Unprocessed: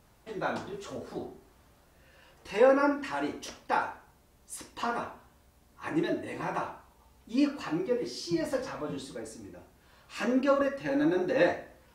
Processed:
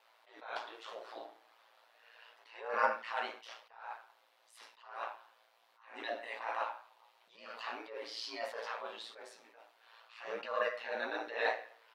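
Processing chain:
high-pass filter 620 Hz 24 dB per octave
high shelf with overshoot 5,200 Hz −10.5 dB, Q 1.5
in parallel at −6 dB: asymmetric clip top −21 dBFS
on the sum: ring modulation 57 Hz
double-tracking delay 13 ms −11 dB
level that may rise only so fast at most 100 dB per second
level −1 dB

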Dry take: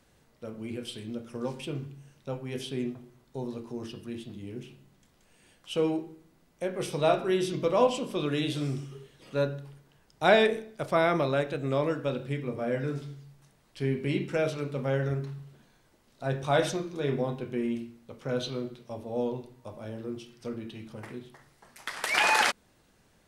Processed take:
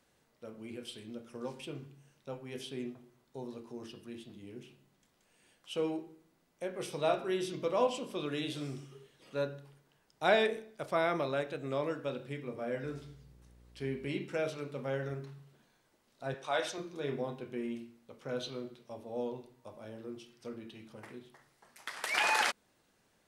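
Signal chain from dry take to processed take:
low-shelf EQ 140 Hz −10.5 dB
0:12.83–0:14.08: hum with harmonics 60 Hz, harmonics 9, −54 dBFS −7 dB per octave
0:16.34–0:16.78: meter weighting curve A
level −5.5 dB

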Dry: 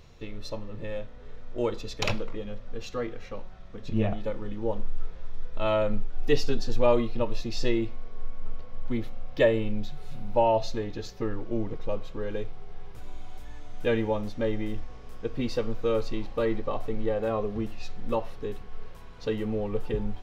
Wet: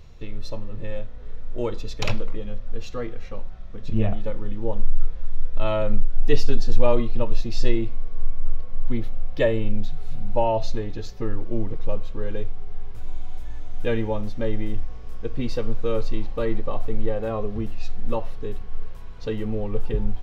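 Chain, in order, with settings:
low-shelf EQ 94 Hz +11 dB

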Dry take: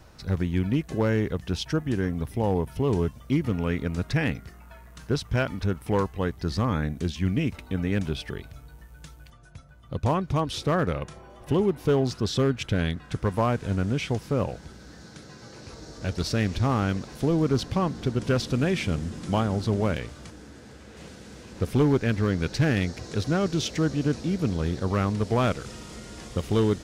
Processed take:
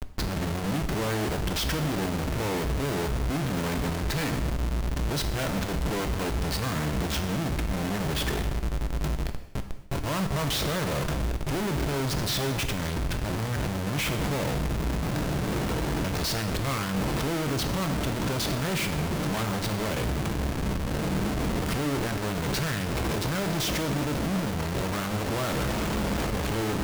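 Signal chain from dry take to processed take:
gain on a spectral selection 0:11.35–0:13.62, 410–1,400 Hz −14 dB
comparator with hysteresis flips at −42.5 dBFS
reverb whose tail is shaped and stops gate 290 ms falling, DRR 6.5 dB
level −1.5 dB

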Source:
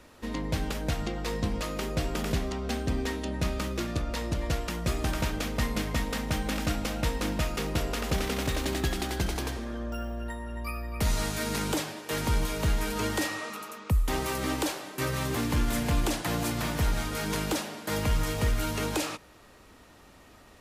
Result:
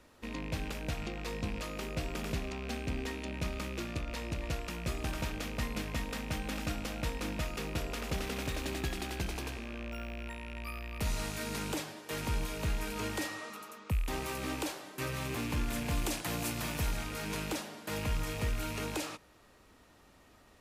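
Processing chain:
loose part that buzzes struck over −37 dBFS, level −26 dBFS
0:15.90–0:16.97: high-shelf EQ 4,900 Hz +6 dB
level −7 dB

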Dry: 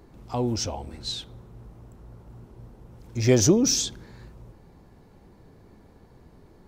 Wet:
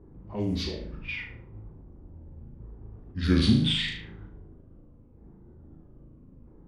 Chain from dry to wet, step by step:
pitch shifter swept by a sawtooth −10.5 semitones, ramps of 1,294 ms
notch filter 4,100 Hz, Q 7
flutter between parallel walls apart 6.4 metres, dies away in 0.59 s
in parallel at −2.5 dB: downward compressor, threshold −36 dBFS, peak gain reduction 22 dB
on the sum: parametric band 690 Hz −8.5 dB 0.79 octaves
low-pass that shuts in the quiet parts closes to 610 Hz, open at −20.5 dBFS
level that may rise only so fast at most 410 dB per second
level −4 dB

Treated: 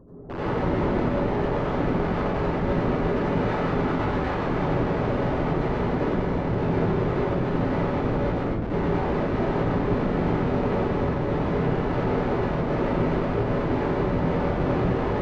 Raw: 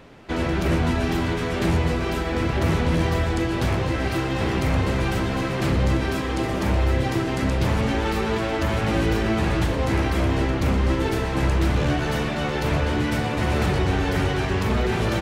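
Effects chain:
spectral envelope exaggerated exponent 3
0:04.19–0:04.91: hum removal 88.42 Hz, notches 2
brickwall limiter −20.5 dBFS, peak gain reduction 8.5 dB
low-pass filter sweep 1,200 Hz → 170 Hz, 0:01.78–0:05.28
wrap-around overflow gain 23 dB
head-to-tape spacing loss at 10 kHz 43 dB
convolution reverb RT60 0.65 s, pre-delay 78 ms, DRR −7.5 dB
level −2.5 dB

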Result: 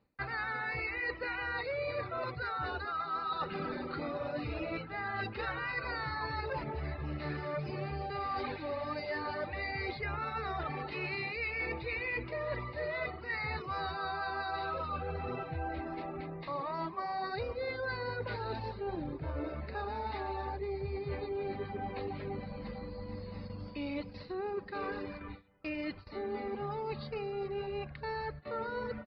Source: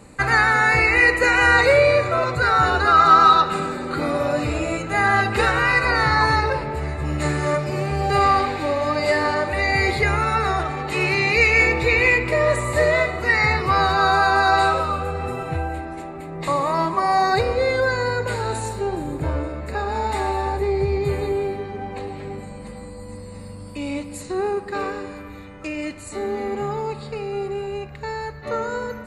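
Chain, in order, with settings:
reverb reduction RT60 0.64 s
noise gate with hold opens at −30 dBFS
reversed playback
downward compressor 10 to 1, threshold −30 dBFS, peak gain reduction 20.5 dB
reversed playback
downsampling to 11,025 Hz
level −4 dB

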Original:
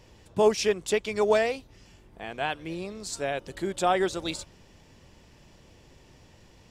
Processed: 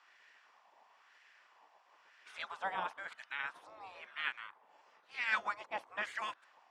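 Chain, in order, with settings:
played backwards from end to start
gate on every frequency bin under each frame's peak −15 dB weak
auto-filter band-pass sine 1 Hz 840–1,800 Hz
level +5 dB

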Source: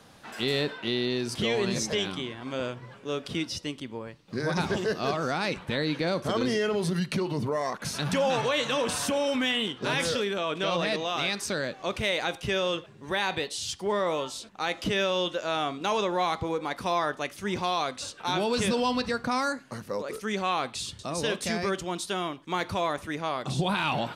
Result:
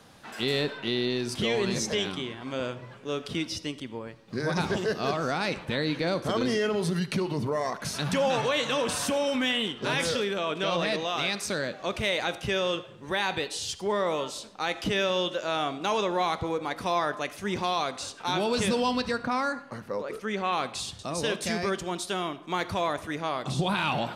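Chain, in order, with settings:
0:19.17–0:20.53: bass and treble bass −2 dB, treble −9 dB
convolution reverb RT60 0.95 s, pre-delay 30 ms, DRR 16 dB

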